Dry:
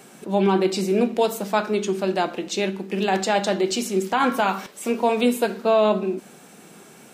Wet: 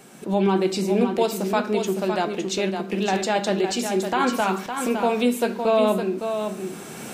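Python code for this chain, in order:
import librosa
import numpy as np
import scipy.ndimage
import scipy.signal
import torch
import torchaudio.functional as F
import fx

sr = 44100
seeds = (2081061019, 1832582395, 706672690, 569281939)

y = fx.recorder_agc(x, sr, target_db=-14.5, rise_db_per_s=12.0, max_gain_db=30)
y = fx.low_shelf(y, sr, hz=110.0, db=7.0)
y = y + 10.0 ** (-7.0 / 20.0) * np.pad(y, (int(560 * sr / 1000.0), 0))[:len(y)]
y = F.gain(torch.from_numpy(y), -2.0).numpy()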